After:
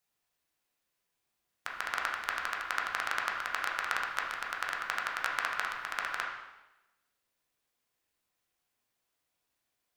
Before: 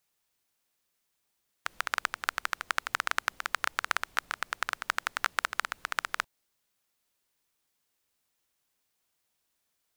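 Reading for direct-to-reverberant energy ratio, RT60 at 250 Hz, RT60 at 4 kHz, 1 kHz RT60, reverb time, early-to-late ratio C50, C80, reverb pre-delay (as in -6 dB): -2.5 dB, 1.0 s, 0.95 s, 1.0 s, 1.0 s, 3.0 dB, 5.5 dB, 5 ms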